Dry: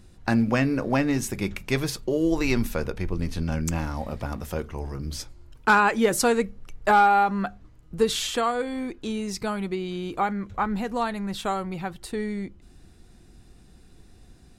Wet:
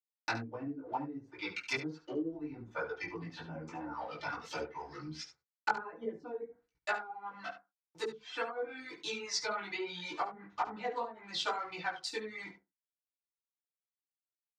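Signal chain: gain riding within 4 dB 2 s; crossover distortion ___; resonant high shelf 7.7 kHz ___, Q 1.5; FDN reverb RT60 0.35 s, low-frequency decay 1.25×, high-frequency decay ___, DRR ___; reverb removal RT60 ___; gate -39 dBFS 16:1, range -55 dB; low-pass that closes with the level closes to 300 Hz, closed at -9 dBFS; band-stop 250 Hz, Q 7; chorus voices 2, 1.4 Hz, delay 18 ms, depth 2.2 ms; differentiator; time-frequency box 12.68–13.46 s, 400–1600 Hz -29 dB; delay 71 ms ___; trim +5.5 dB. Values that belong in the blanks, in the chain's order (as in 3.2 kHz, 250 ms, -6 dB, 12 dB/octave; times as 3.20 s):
-40 dBFS, -14 dB, 0.3×, -9.5 dB, 1.3 s, -12.5 dB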